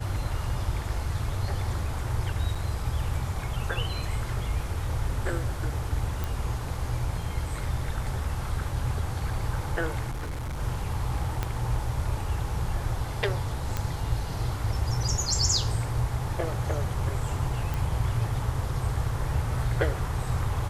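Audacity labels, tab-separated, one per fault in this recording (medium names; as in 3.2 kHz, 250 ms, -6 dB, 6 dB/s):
2.550000	2.560000	dropout 5.5 ms
6.240000	6.240000	pop
10.100000	10.590000	clipped -29.5 dBFS
11.430000	11.430000	pop -14 dBFS
13.770000	13.770000	pop -14 dBFS
17.740000	17.740000	pop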